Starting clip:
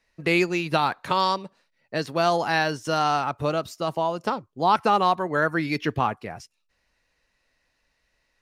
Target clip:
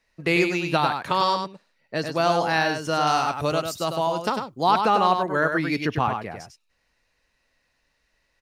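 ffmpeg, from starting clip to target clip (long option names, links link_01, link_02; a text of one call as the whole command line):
ffmpeg -i in.wav -filter_complex "[0:a]asettb=1/sr,asplit=3[link_01][link_02][link_03];[link_01]atrim=end=3.074[link_04];[link_02]atrim=start=3.07:end=4.71,asetpts=PTS-STARTPTS,afade=type=in:duration=0.004:curve=qsin,afade=type=out:start_time=1.636:duration=0.004:curve=qsin,highshelf=frequency=3900:gain=9.5[link_05];[link_03]atrim=start=4.706[link_06];[link_04][link_05]acrossfade=duration=0.004:curve1=hsin:curve2=qsin[link_07];[link_07][link_06]acrossfade=duration=0.004:curve1=qsin:curve2=hsin,aecho=1:1:99:0.501" out.wav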